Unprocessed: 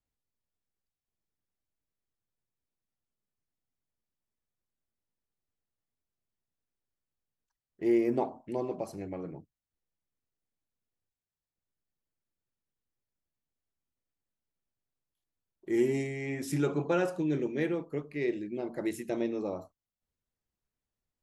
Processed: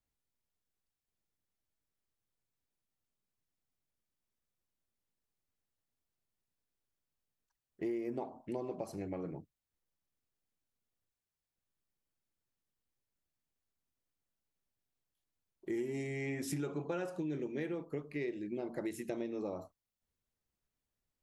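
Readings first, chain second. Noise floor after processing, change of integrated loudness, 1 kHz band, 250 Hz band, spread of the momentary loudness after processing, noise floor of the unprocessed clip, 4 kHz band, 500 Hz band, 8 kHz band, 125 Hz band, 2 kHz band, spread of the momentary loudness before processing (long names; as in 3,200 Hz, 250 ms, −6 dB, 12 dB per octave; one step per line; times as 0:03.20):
below −85 dBFS, −7.5 dB, −8.5 dB, −7.5 dB, 5 LU, below −85 dBFS, −6.0 dB, −8.0 dB, −3.0 dB, −6.5 dB, −6.5 dB, 11 LU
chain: downward compressor, threshold −35 dBFS, peak gain reduction 13 dB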